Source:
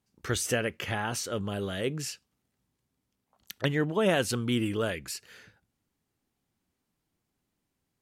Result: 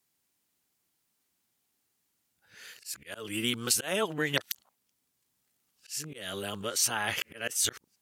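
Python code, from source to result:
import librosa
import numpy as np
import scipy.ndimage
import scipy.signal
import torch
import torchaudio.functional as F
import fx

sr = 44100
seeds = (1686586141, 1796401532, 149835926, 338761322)

y = x[::-1].copy()
y = fx.auto_swell(y, sr, attack_ms=209.0)
y = fx.tilt_eq(y, sr, slope=3.0)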